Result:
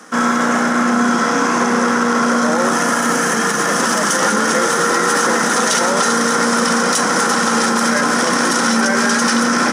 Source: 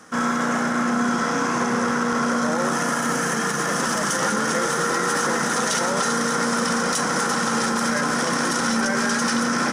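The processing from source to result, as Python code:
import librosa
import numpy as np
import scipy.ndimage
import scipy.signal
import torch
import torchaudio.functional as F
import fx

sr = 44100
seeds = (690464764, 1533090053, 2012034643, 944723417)

y = scipy.signal.sosfilt(scipy.signal.butter(4, 180.0, 'highpass', fs=sr, output='sos'), x)
y = F.gain(torch.from_numpy(y), 7.0).numpy()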